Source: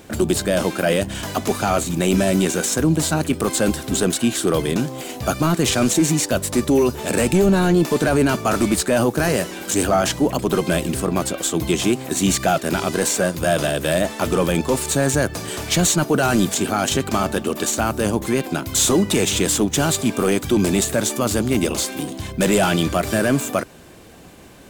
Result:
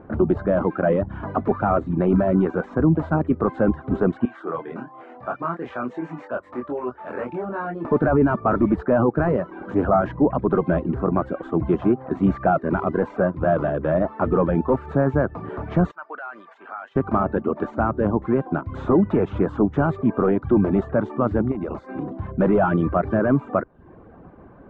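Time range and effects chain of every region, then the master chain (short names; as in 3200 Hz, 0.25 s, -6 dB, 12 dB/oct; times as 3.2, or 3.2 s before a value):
4.25–7.85 HPF 1400 Hz 6 dB/oct + bell 4400 Hz -2.5 dB 1.4 oct + doubler 24 ms -3 dB
15.91–16.96 HPF 1300 Hz + compressor 3:1, threshold -28 dBFS
21.51–22.12 high shelf 4600 Hz +8.5 dB + compressor 4:1, threshold -21 dBFS + notch 3200 Hz, Q 7
whole clip: reverb removal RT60 0.51 s; Chebyshev low-pass 1300 Hz, order 3; gain +1 dB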